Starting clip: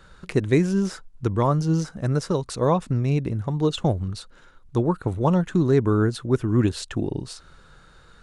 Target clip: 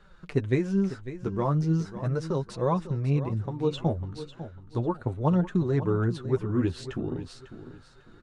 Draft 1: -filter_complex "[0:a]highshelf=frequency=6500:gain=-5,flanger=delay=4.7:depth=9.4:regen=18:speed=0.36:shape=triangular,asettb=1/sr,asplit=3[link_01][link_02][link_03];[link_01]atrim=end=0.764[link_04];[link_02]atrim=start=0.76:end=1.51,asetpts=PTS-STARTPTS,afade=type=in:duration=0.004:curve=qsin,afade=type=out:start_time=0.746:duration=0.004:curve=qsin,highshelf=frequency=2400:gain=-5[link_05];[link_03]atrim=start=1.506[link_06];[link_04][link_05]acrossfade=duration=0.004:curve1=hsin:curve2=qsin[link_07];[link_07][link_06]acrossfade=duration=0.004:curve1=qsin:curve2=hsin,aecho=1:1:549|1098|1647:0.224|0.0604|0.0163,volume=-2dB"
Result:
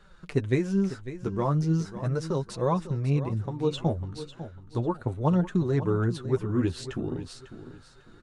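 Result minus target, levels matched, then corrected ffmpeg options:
8,000 Hz band +4.5 dB
-filter_complex "[0:a]highshelf=frequency=6500:gain=-13.5,flanger=delay=4.7:depth=9.4:regen=18:speed=0.36:shape=triangular,asettb=1/sr,asplit=3[link_01][link_02][link_03];[link_01]atrim=end=0.764[link_04];[link_02]atrim=start=0.76:end=1.51,asetpts=PTS-STARTPTS,afade=type=in:duration=0.004:curve=qsin,afade=type=out:start_time=0.746:duration=0.004:curve=qsin,highshelf=frequency=2400:gain=-5[link_05];[link_03]atrim=start=1.506[link_06];[link_04][link_05]acrossfade=duration=0.004:curve1=hsin:curve2=qsin[link_07];[link_07][link_06]acrossfade=duration=0.004:curve1=qsin:curve2=hsin,aecho=1:1:549|1098|1647:0.224|0.0604|0.0163,volume=-2dB"

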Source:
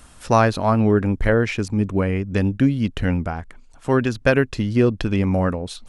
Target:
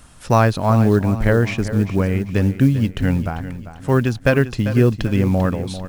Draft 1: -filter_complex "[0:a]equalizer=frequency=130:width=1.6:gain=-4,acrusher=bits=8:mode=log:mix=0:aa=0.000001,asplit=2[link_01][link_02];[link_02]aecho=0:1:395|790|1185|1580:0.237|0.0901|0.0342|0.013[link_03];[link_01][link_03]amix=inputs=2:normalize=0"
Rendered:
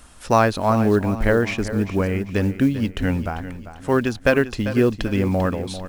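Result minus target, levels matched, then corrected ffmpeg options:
125 Hz band −4.5 dB
-filter_complex "[0:a]equalizer=frequency=130:width=1.6:gain=6,acrusher=bits=8:mode=log:mix=0:aa=0.000001,asplit=2[link_01][link_02];[link_02]aecho=0:1:395|790|1185|1580:0.237|0.0901|0.0342|0.013[link_03];[link_01][link_03]amix=inputs=2:normalize=0"

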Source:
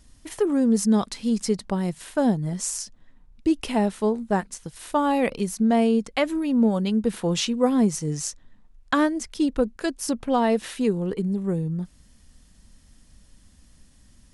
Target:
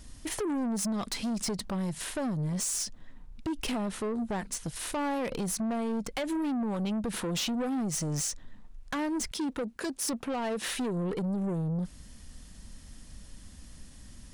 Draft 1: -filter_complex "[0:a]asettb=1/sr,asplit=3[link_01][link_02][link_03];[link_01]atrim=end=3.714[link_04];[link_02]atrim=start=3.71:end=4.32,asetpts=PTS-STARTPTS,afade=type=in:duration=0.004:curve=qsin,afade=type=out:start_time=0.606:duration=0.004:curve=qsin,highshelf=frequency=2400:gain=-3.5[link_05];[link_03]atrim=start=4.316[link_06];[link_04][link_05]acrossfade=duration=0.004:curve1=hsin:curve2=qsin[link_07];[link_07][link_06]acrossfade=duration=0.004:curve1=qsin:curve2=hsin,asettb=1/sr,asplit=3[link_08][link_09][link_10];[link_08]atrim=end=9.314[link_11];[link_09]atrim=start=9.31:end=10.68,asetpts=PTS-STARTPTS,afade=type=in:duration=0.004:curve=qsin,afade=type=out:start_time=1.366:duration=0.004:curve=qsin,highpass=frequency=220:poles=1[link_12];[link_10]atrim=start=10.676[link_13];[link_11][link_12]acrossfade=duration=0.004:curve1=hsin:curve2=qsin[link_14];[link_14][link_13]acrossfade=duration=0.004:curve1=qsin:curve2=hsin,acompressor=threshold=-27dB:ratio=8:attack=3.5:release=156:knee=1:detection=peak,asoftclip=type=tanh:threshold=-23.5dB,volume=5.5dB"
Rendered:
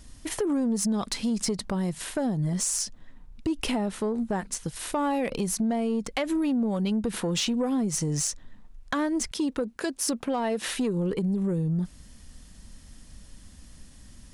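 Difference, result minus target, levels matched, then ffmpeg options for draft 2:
soft clipping: distortion −12 dB
-filter_complex "[0:a]asettb=1/sr,asplit=3[link_01][link_02][link_03];[link_01]atrim=end=3.714[link_04];[link_02]atrim=start=3.71:end=4.32,asetpts=PTS-STARTPTS,afade=type=in:duration=0.004:curve=qsin,afade=type=out:start_time=0.606:duration=0.004:curve=qsin,highshelf=frequency=2400:gain=-3.5[link_05];[link_03]atrim=start=4.316[link_06];[link_04][link_05]acrossfade=duration=0.004:curve1=hsin:curve2=qsin[link_07];[link_07][link_06]acrossfade=duration=0.004:curve1=qsin:curve2=hsin,asettb=1/sr,asplit=3[link_08][link_09][link_10];[link_08]atrim=end=9.314[link_11];[link_09]atrim=start=9.31:end=10.68,asetpts=PTS-STARTPTS,afade=type=in:duration=0.004:curve=qsin,afade=type=out:start_time=1.366:duration=0.004:curve=qsin,highpass=frequency=220:poles=1[link_12];[link_10]atrim=start=10.676[link_13];[link_11][link_12]acrossfade=duration=0.004:curve1=hsin:curve2=qsin[link_14];[link_14][link_13]acrossfade=duration=0.004:curve1=qsin:curve2=hsin,acompressor=threshold=-27dB:ratio=8:attack=3.5:release=156:knee=1:detection=peak,asoftclip=type=tanh:threshold=-33.5dB,volume=5.5dB"

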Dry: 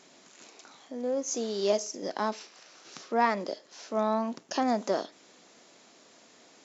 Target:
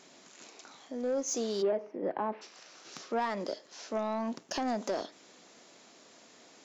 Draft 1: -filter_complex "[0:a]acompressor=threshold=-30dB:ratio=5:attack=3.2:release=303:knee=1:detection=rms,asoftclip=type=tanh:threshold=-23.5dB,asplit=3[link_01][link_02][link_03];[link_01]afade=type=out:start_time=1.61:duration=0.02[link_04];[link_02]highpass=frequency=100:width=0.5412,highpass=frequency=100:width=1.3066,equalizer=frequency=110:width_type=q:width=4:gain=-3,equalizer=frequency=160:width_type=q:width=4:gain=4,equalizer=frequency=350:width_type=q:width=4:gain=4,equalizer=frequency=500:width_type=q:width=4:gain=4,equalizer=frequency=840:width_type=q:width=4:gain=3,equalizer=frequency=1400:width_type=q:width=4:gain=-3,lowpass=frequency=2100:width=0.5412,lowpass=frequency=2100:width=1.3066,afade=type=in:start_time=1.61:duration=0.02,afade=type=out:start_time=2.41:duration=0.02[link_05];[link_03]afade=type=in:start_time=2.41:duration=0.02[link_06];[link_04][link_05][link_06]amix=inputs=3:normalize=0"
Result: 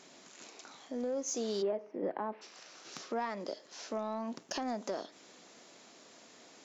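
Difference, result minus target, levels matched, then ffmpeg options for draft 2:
downward compressor: peak gain reduction +5.5 dB
-filter_complex "[0:a]acompressor=threshold=-23dB:ratio=5:attack=3.2:release=303:knee=1:detection=rms,asoftclip=type=tanh:threshold=-23.5dB,asplit=3[link_01][link_02][link_03];[link_01]afade=type=out:start_time=1.61:duration=0.02[link_04];[link_02]highpass=frequency=100:width=0.5412,highpass=frequency=100:width=1.3066,equalizer=frequency=110:width_type=q:width=4:gain=-3,equalizer=frequency=160:width_type=q:width=4:gain=4,equalizer=frequency=350:width_type=q:width=4:gain=4,equalizer=frequency=500:width_type=q:width=4:gain=4,equalizer=frequency=840:width_type=q:width=4:gain=3,equalizer=frequency=1400:width_type=q:width=4:gain=-3,lowpass=frequency=2100:width=0.5412,lowpass=frequency=2100:width=1.3066,afade=type=in:start_time=1.61:duration=0.02,afade=type=out:start_time=2.41:duration=0.02[link_05];[link_03]afade=type=in:start_time=2.41:duration=0.02[link_06];[link_04][link_05][link_06]amix=inputs=3:normalize=0"

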